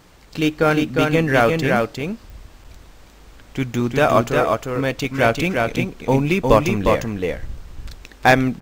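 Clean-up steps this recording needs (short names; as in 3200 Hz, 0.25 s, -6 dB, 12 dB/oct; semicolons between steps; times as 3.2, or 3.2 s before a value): de-click; interpolate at 2.64/5.76, 5.8 ms; inverse comb 0.355 s -3.5 dB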